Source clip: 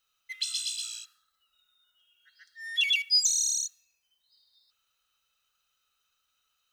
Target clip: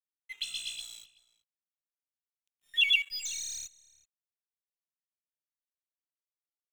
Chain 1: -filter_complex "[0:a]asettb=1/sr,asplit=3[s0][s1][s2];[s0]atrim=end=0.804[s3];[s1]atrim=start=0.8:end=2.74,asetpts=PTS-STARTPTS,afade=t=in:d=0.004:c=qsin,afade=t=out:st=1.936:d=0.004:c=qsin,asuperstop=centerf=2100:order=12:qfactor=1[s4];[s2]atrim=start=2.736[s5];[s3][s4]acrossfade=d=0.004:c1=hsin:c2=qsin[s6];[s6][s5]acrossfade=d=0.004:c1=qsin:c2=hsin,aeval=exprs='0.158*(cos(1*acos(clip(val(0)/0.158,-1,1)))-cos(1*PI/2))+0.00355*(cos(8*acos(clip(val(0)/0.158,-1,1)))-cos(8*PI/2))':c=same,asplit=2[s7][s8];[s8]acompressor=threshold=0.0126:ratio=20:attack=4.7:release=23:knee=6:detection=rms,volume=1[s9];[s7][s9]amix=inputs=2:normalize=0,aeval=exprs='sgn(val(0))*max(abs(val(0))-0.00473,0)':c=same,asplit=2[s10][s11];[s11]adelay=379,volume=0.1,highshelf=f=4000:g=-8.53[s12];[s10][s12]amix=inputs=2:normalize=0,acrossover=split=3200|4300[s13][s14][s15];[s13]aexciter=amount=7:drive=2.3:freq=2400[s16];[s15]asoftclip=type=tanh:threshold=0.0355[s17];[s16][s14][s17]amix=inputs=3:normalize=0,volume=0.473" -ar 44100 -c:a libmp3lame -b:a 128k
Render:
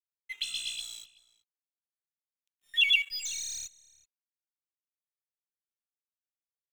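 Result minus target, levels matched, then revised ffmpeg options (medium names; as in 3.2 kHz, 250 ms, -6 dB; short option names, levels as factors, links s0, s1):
compression: peak gain reduction -11.5 dB
-filter_complex "[0:a]asettb=1/sr,asplit=3[s0][s1][s2];[s0]atrim=end=0.804[s3];[s1]atrim=start=0.8:end=2.74,asetpts=PTS-STARTPTS,afade=t=in:d=0.004:c=qsin,afade=t=out:st=1.936:d=0.004:c=qsin,asuperstop=centerf=2100:order=12:qfactor=1[s4];[s2]atrim=start=2.736[s5];[s3][s4]acrossfade=d=0.004:c1=hsin:c2=qsin[s6];[s6][s5]acrossfade=d=0.004:c1=qsin:c2=hsin,aeval=exprs='0.158*(cos(1*acos(clip(val(0)/0.158,-1,1)))-cos(1*PI/2))+0.00355*(cos(8*acos(clip(val(0)/0.158,-1,1)))-cos(8*PI/2))':c=same,asplit=2[s7][s8];[s8]acompressor=threshold=0.00316:ratio=20:attack=4.7:release=23:knee=6:detection=rms,volume=1[s9];[s7][s9]amix=inputs=2:normalize=0,aeval=exprs='sgn(val(0))*max(abs(val(0))-0.00473,0)':c=same,asplit=2[s10][s11];[s11]adelay=379,volume=0.1,highshelf=f=4000:g=-8.53[s12];[s10][s12]amix=inputs=2:normalize=0,acrossover=split=3200|4300[s13][s14][s15];[s13]aexciter=amount=7:drive=2.3:freq=2400[s16];[s15]asoftclip=type=tanh:threshold=0.0355[s17];[s16][s14][s17]amix=inputs=3:normalize=0,volume=0.473" -ar 44100 -c:a libmp3lame -b:a 128k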